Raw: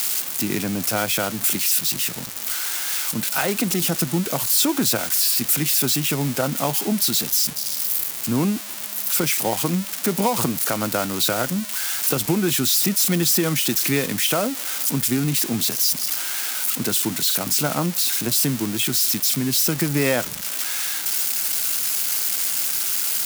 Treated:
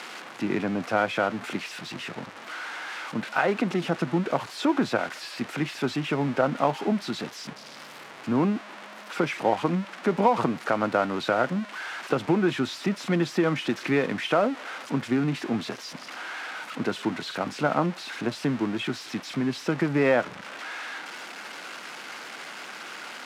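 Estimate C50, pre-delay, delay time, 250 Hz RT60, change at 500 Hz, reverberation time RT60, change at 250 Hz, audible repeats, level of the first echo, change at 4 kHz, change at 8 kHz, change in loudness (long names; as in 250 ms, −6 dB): no reverb audible, no reverb audible, no echo audible, no reverb audible, +0.5 dB, no reverb audible, −2.5 dB, no echo audible, no echo audible, −12.5 dB, −25.0 dB, −8.0 dB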